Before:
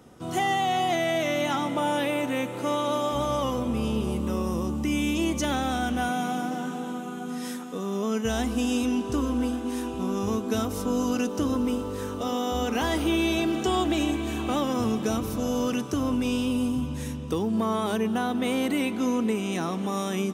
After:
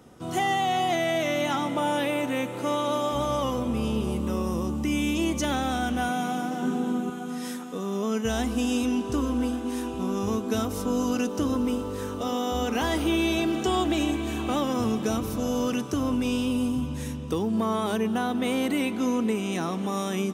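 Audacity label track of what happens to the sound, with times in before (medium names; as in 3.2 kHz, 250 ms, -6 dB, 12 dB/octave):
6.620000	7.100000	small resonant body resonances 220/370 Hz, height 10 dB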